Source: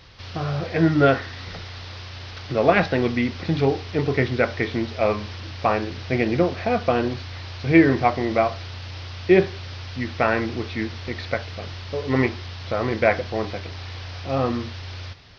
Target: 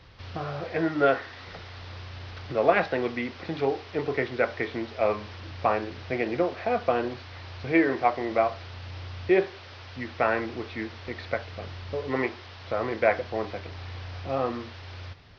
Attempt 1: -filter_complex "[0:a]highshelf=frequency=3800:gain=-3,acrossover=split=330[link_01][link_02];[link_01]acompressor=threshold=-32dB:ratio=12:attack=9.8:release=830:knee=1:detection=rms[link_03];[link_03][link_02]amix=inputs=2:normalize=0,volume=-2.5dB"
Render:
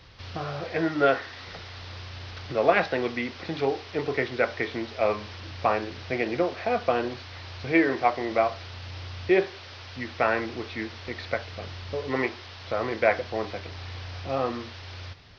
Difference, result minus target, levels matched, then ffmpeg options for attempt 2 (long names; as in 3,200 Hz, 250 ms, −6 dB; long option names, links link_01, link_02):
8,000 Hz band +5.5 dB
-filter_complex "[0:a]highshelf=frequency=3800:gain=-11,acrossover=split=330[link_01][link_02];[link_01]acompressor=threshold=-32dB:ratio=12:attack=9.8:release=830:knee=1:detection=rms[link_03];[link_03][link_02]amix=inputs=2:normalize=0,volume=-2.5dB"